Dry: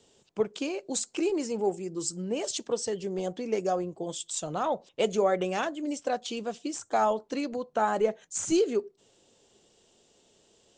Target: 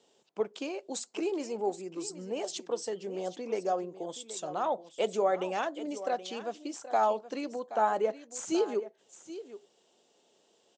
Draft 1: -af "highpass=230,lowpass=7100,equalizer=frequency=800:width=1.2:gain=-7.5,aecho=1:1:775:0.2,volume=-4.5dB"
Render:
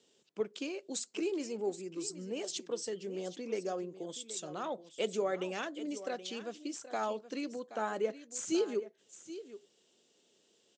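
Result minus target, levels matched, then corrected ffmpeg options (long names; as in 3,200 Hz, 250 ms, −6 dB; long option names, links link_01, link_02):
1,000 Hz band −5.5 dB
-af "highpass=230,lowpass=7100,equalizer=frequency=800:width=1.2:gain=4,aecho=1:1:775:0.2,volume=-4.5dB"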